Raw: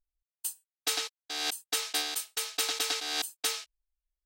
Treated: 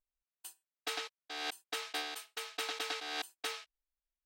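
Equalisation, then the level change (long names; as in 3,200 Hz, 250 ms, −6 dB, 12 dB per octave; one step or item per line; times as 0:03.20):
bass and treble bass −7 dB, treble −13 dB
−2.5 dB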